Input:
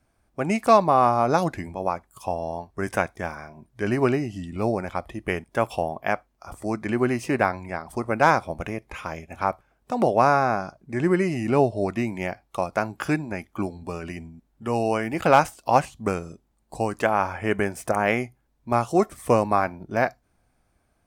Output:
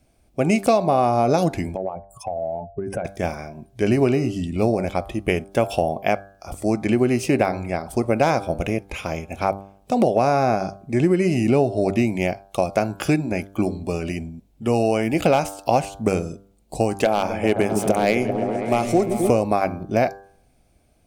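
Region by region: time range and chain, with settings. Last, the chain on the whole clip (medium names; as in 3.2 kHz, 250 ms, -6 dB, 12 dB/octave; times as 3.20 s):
1.76–3.05 s: spectral contrast enhancement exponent 2.1 + compression 5:1, threshold -29 dBFS
17.04–19.30 s: high-pass 130 Hz + hard clipper -11.5 dBFS + delay with an opening low-pass 130 ms, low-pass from 200 Hz, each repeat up 1 oct, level -3 dB
whole clip: high-order bell 1.3 kHz -9.5 dB 1.3 oct; de-hum 98.2 Hz, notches 17; compression 5:1, threshold -22 dBFS; trim +8 dB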